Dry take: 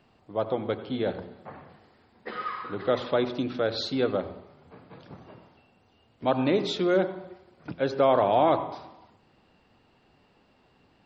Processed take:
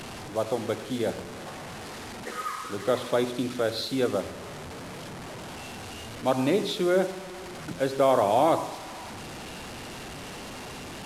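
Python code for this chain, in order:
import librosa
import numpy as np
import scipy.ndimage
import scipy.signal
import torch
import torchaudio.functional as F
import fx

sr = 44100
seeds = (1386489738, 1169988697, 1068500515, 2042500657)

y = fx.delta_mod(x, sr, bps=64000, step_db=-33.5)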